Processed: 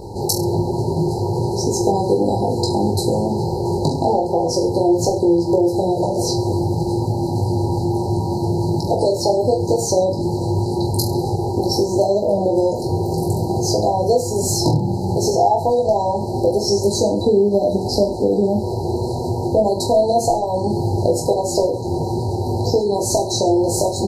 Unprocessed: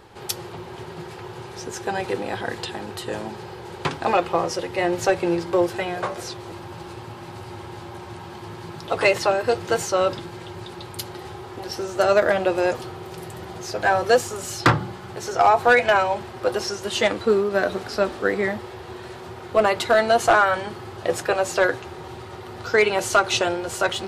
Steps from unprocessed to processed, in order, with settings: bass shelf 470 Hz +8.5 dB; in parallel at +2.5 dB: peak limiter -10.5 dBFS, peak gain reduction 9 dB; on the sum: compression, threshold -18 dBFS, peak gain reduction 14 dB; brick-wall FIR band-stop 980–3900 Hz; reverse bouncing-ball echo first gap 20 ms, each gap 1.15×, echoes 5; trim +2.5 dB

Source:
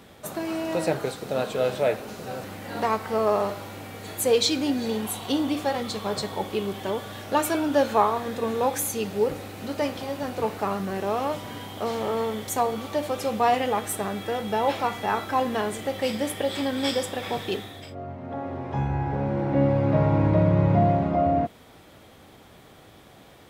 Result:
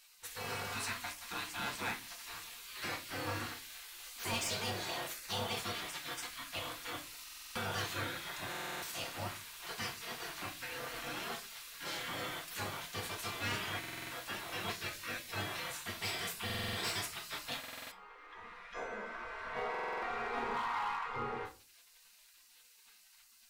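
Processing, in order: spectral gate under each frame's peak -20 dB weak; 20.54–21.06 s: resonant low shelf 680 Hz -10 dB, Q 3; hard clipper -32 dBFS, distortion -15 dB; reverberation RT60 0.30 s, pre-delay 4 ms, DRR 2.5 dB; buffer glitch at 7.23/8.50/13.79/16.45/17.59/19.70 s, samples 2048, times 6; trim -2 dB

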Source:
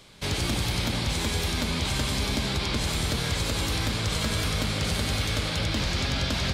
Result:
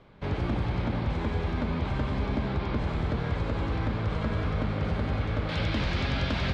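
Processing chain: low-pass 1.4 kHz 12 dB/octave, from 5.49 s 2.7 kHz

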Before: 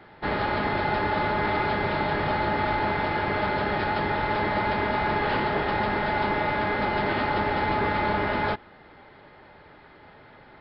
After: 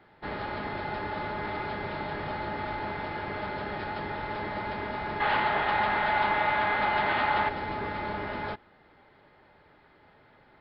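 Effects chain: 5.20–7.49 s: high-order bell 1.6 kHz +9.5 dB 2.9 oct; trim -8.5 dB

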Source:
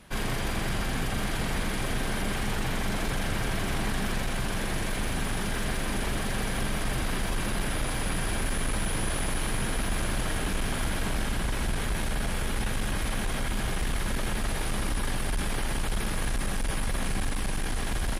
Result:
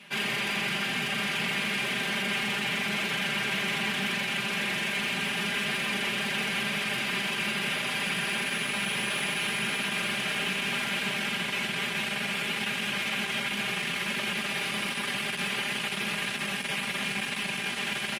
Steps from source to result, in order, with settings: high-pass 130 Hz 24 dB/octave; peaking EQ 2.6 kHz +15 dB 1.2 oct; comb 5 ms, depth 87%; in parallel at -4 dB: hard clipper -24.5 dBFS, distortion -9 dB; on the sum: trim -9 dB

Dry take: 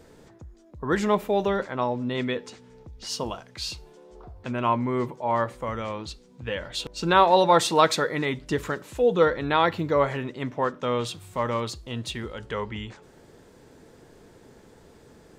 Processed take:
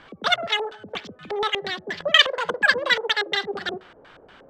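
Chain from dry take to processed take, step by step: bit-reversed sample order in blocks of 16 samples; wide varispeed 3.42×; on a send at -18.5 dB: reverberation RT60 0.35 s, pre-delay 48 ms; on the sum: LFO low-pass square 4.2 Hz 510–3600 Hz; trim +2 dB

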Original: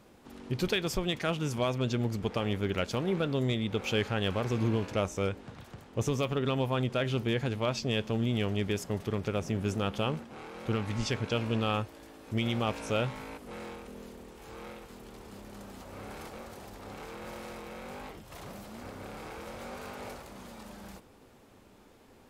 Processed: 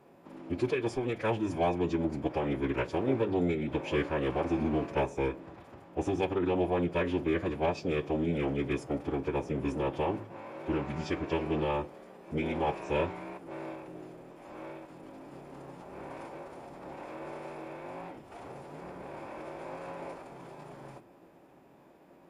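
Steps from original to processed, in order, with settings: FFT filter 130 Hz 0 dB, 790 Hz +4 dB, 1.5 kHz -6 dB, 6.3 kHz -14 dB, 13 kHz -6 dB; formant-preserving pitch shift -6.5 st; reverberation RT60 0.40 s, pre-delay 3 ms, DRR 14.5 dB; trim +1.5 dB

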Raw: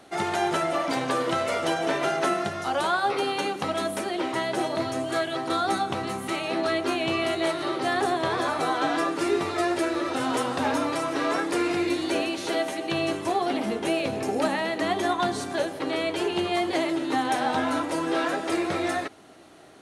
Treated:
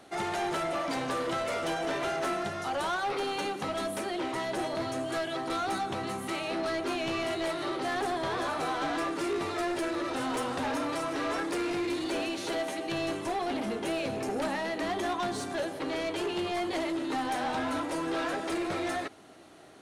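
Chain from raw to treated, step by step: saturation -24 dBFS, distortion -12 dB; trim -2.5 dB

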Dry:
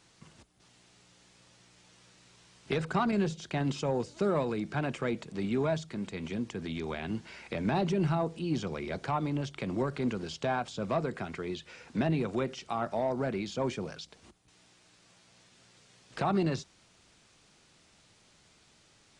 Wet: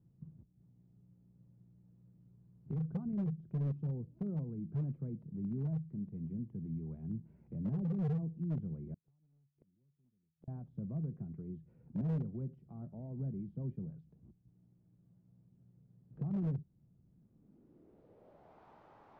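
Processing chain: bass shelf 240 Hz -9 dB; in parallel at +2.5 dB: compression 10:1, threshold -47 dBFS, peak gain reduction 21.5 dB; on the sum: low-pass sweep 150 Hz -> 910 Hz, 17.09–18.66 s; overload inside the chain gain 29.5 dB; 8.94–10.48 s: inverted gate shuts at -40 dBFS, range -37 dB; trim -1.5 dB

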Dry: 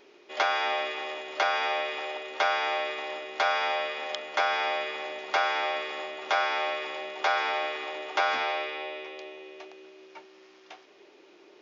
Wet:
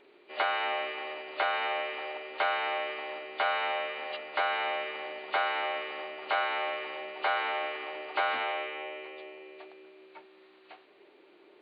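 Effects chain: knee-point frequency compression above 2.2 kHz 1.5:1; trim -3 dB

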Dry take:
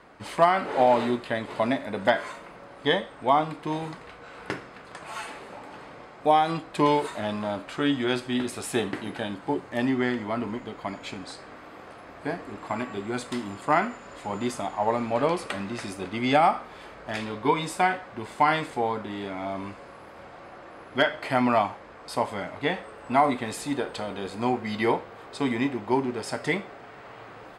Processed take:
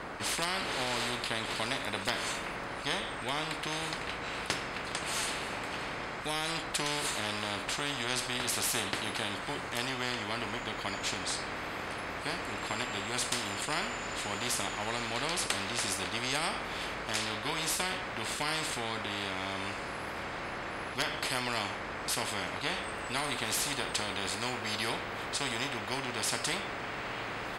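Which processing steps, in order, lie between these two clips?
spectrum-flattening compressor 4:1; trim -4.5 dB

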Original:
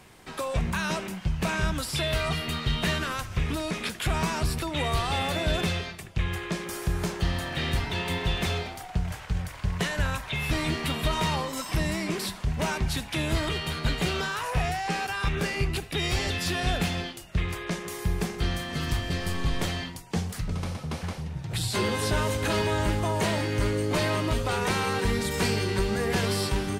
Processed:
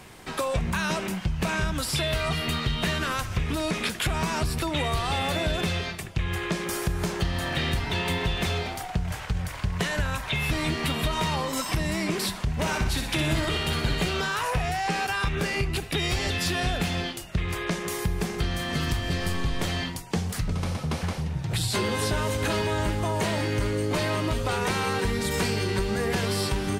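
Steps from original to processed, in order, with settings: compression 4:1, threshold -29 dBFS, peak gain reduction 7.5 dB; 12.55–14.06 s: flutter echo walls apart 10.4 m, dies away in 0.6 s; trim +5.5 dB

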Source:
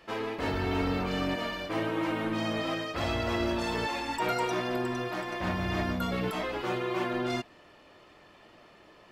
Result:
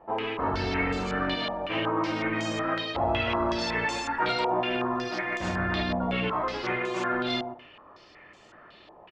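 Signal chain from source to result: feedback delay 125 ms, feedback 17%, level -9.5 dB; step-sequenced low-pass 5.4 Hz 830–7100 Hz

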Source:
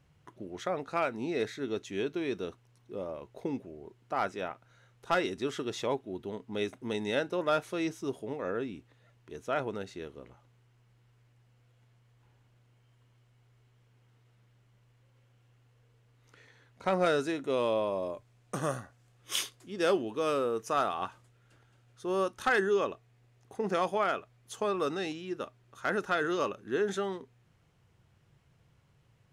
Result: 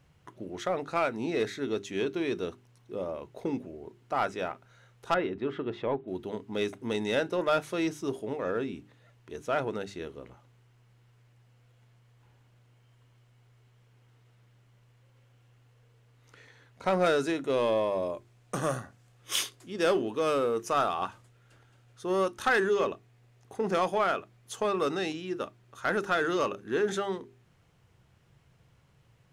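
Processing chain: hum notches 50/100/150/200/250/300/350/400 Hz; in parallel at -6 dB: hard clipper -29 dBFS, distortion -9 dB; 5.14–6.08 s: on the sum: distance through air 480 m

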